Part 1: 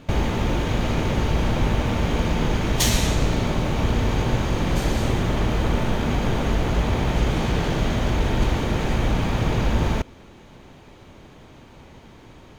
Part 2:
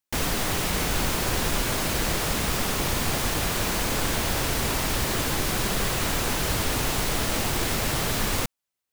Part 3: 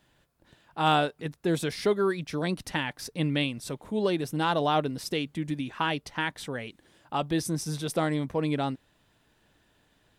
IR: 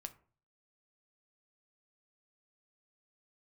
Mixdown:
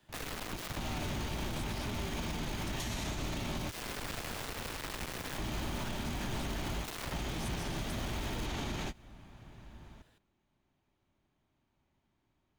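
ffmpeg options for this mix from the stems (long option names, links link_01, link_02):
-filter_complex "[0:a]equalizer=frequency=480:width=8:gain=-14.5,volume=1.5dB[link_01];[1:a]acrossover=split=4600[link_02][link_03];[link_03]acompressor=threshold=-45dB:ratio=4:attack=1:release=60[link_04];[link_02][link_04]amix=inputs=2:normalize=0,bandreject=frequency=50:width_type=h:width=6,bandreject=frequency=100:width_type=h:width=6,bandreject=frequency=150:width_type=h:width=6,bandreject=frequency=200:width_type=h:width=6,acrusher=bits=3:mix=0:aa=0.000001,volume=-11.5dB[link_05];[2:a]acrossover=split=410|3000[link_06][link_07][link_08];[link_06]acompressor=threshold=-37dB:ratio=3[link_09];[link_09][link_07][link_08]amix=inputs=3:normalize=0,volume=27.5dB,asoftclip=hard,volume=-27.5dB,volume=-2dB,asplit=3[link_10][link_11][link_12];[link_10]atrim=end=3.57,asetpts=PTS-STARTPTS,afade=type=out:start_time=3.566:duration=0.004:curve=hsin[link_13];[link_11]atrim=start=3.57:end=5.38,asetpts=PTS-STARTPTS,volume=0[link_14];[link_12]atrim=start=5.38,asetpts=PTS-STARTPTS,afade=type=in:duration=0.004:curve=hsin[link_15];[link_13][link_14][link_15]concat=n=3:v=0:a=1,asplit=2[link_16][link_17];[link_17]apad=whole_len=554951[link_18];[link_01][link_18]sidechaingate=range=-33dB:threshold=-57dB:ratio=16:detection=peak[link_19];[link_19][link_05][link_16]amix=inputs=3:normalize=0,acrossover=split=190|2900[link_20][link_21][link_22];[link_20]acompressor=threshold=-33dB:ratio=4[link_23];[link_21]acompressor=threshold=-35dB:ratio=4[link_24];[link_22]acompressor=threshold=-39dB:ratio=4[link_25];[link_23][link_24][link_25]amix=inputs=3:normalize=0,alimiter=level_in=4dB:limit=-24dB:level=0:latency=1:release=75,volume=-4dB"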